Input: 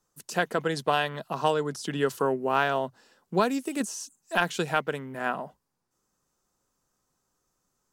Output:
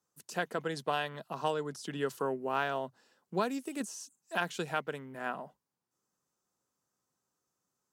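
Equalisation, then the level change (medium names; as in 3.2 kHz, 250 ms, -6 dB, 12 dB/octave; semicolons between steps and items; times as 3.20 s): high-pass 95 Hz; -7.5 dB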